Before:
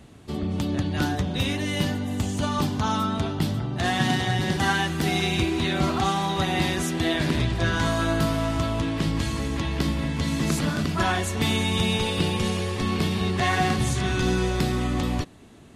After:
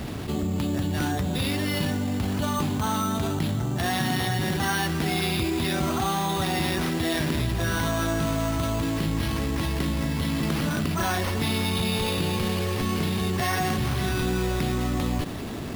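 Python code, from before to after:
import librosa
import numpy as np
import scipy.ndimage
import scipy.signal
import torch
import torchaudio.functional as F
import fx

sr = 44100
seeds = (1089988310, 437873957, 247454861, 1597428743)

y = np.repeat(x[::6], 6)[:len(x)]
y = fx.env_flatten(y, sr, amount_pct=70)
y = y * librosa.db_to_amplitude(-4.5)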